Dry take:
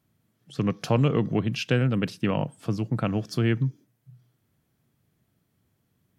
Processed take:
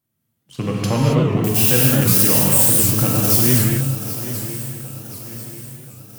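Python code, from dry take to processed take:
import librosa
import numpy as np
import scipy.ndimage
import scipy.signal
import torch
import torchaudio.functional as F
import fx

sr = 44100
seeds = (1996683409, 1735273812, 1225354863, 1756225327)

y = fx.crossing_spikes(x, sr, level_db=-16.5, at=(1.44, 3.69))
y = fx.high_shelf(y, sr, hz=7300.0, db=12.0)
y = fx.leveller(y, sr, passes=2)
y = fx.echo_swing(y, sr, ms=1038, ratio=3, feedback_pct=44, wet_db=-13)
y = fx.rev_gated(y, sr, seeds[0], gate_ms=300, shape='flat', drr_db=-4.0)
y = fx.record_warp(y, sr, rpm=78.0, depth_cents=160.0)
y = F.gain(torch.from_numpy(y), -6.0).numpy()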